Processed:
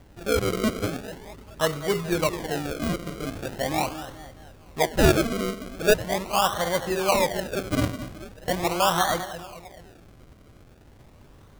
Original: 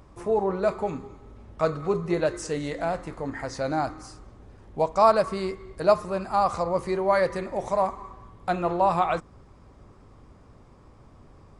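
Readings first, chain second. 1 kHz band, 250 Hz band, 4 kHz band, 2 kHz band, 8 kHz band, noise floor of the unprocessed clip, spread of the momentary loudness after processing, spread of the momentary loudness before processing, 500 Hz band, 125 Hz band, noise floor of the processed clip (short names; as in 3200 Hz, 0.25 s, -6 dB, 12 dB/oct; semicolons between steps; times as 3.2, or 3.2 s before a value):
-2.0 dB, +3.5 dB, +12.0 dB, +6.0 dB, +12.5 dB, -53 dBFS, 17 LU, 11 LU, -1.0 dB, +5.0 dB, -52 dBFS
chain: split-band echo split 820 Hz, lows 0.214 s, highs 96 ms, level -11.5 dB; decimation with a swept rate 34×, swing 100% 0.41 Hz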